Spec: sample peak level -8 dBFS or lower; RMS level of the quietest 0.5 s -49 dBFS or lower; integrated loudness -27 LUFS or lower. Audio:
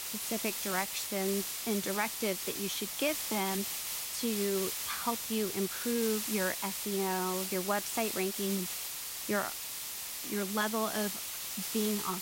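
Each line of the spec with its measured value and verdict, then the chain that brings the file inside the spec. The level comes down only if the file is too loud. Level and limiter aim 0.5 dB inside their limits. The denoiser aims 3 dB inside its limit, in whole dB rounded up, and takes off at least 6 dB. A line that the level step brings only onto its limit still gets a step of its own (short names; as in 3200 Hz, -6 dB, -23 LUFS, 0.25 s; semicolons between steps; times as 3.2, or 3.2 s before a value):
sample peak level -16.5 dBFS: OK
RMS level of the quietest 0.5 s -40 dBFS: fail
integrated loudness -33.0 LUFS: OK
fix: denoiser 12 dB, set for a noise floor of -40 dBFS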